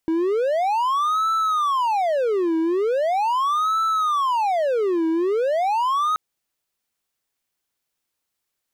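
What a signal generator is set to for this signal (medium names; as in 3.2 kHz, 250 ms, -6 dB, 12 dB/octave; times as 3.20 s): siren wail 323–1320 Hz 0.4 per s triangle -16 dBFS 6.08 s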